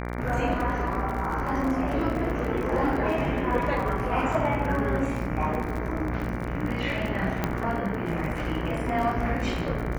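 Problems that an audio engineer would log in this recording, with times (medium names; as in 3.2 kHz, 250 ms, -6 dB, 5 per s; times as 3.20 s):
buzz 60 Hz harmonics 39 -32 dBFS
crackle 37 per s -30 dBFS
7.44 s: pop -11 dBFS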